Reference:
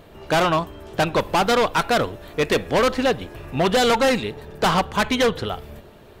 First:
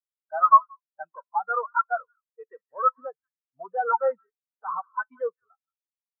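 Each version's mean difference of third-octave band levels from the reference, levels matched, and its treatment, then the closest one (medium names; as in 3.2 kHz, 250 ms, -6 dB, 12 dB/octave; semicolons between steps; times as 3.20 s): 23.5 dB: peaking EQ 1.3 kHz +14.5 dB 1.9 oct; hard clipper -2.5 dBFS, distortion -24 dB; on a send: repeats whose band climbs or falls 177 ms, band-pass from 1.4 kHz, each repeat 1.4 oct, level -7.5 dB; on the sum: spectral contrast expander 4:1; trim -6 dB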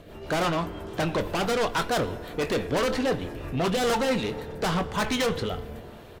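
4.5 dB: rotary cabinet horn 6 Hz, later 1.2 Hz, at 3.36 s; saturation -24 dBFS, distortion -8 dB; doubling 23 ms -12 dB; FDN reverb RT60 2.9 s, high-frequency decay 0.4×, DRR 14.5 dB; trim +2 dB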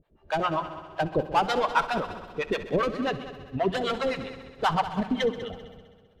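6.5 dB: harmonic tremolo 7.6 Hz, depth 100%, crossover 600 Hz; harmonic-percussive split harmonic -5 dB; on a send: multi-head delay 65 ms, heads all three, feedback 65%, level -13.5 dB; on the sum: spectral contrast expander 1.5:1; trim -1.5 dB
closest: second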